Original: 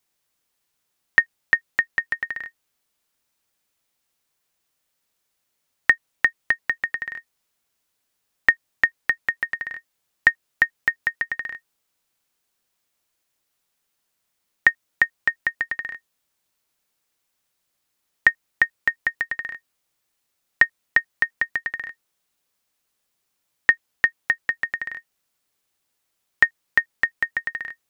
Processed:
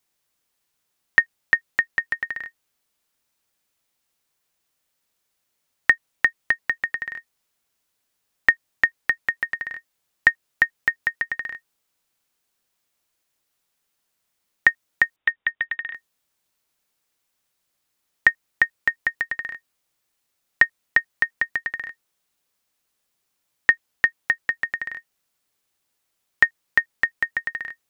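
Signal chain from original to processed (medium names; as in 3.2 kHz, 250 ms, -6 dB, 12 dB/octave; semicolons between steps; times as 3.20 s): 15.16–15.94 s: frequency inversion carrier 3.7 kHz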